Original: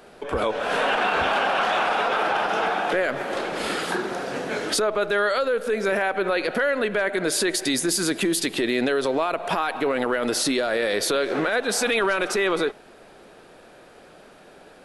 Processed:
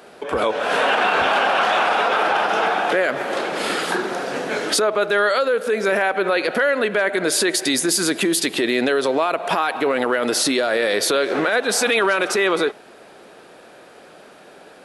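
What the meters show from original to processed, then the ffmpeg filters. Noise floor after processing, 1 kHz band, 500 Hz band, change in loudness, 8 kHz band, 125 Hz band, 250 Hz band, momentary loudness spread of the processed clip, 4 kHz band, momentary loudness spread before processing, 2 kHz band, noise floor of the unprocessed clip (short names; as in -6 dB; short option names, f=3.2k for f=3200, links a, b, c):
-45 dBFS, +4.5 dB, +4.0 dB, +4.0 dB, +4.5 dB, +0.5 dB, +3.0 dB, 5 LU, +4.5 dB, 5 LU, +4.5 dB, -49 dBFS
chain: -af "highpass=f=200:p=1,volume=4.5dB"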